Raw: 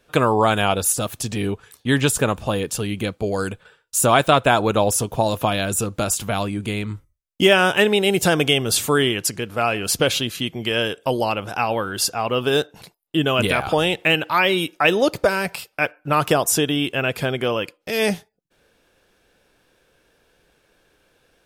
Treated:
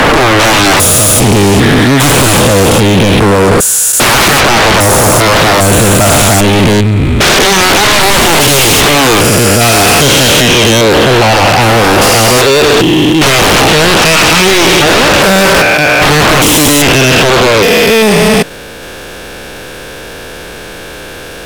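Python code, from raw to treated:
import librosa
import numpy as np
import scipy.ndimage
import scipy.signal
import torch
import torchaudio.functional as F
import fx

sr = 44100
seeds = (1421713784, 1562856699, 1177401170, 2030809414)

y = fx.spec_steps(x, sr, hold_ms=400)
y = fx.power_curve(y, sr, exponent=0.7)
y = fx.fold_sine(y, sr, drive_db=15, ceiling_db=-6.5)
y = F.gain(torch.from_numpy(y), 3.0).numpy()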